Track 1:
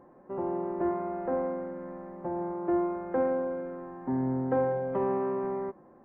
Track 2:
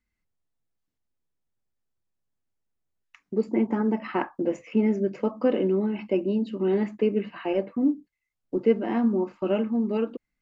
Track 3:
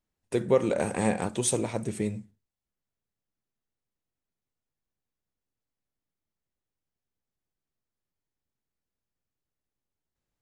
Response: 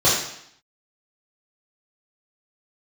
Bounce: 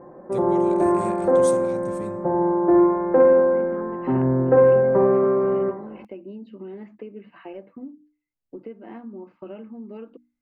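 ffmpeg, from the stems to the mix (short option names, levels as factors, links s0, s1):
-filter_complex "[0:a]lowpass=f=2100:w=0.5412,lowpass=f=2100:w=1.3066,volume=1.06,asplit=2[s0][s1];[s1]volume=0.0944[s2];[1:a]lowpass=3000,acompressor=threshold=0.0501:ratio=10,bandreject=f=60:t=h:w=6,bandreject=f=120:t=h:w=6,bandreject=f=180:t=h:w=6,bandreject=f=240:t=h:w=6,bandreject=f=300:t=h:w=6,volume=0.2[s3];[2:a]bass=f=250:g=5,treble=f=4000:g=4,volume=0.141[s4];[3:a]atrim=start_sample=2205[s5];[s2][s5]afir=irnorm=-1:irlink=0[s6];[s0][s3][s4][s6]amix=inputs=4:normalize=0,acontrast=63"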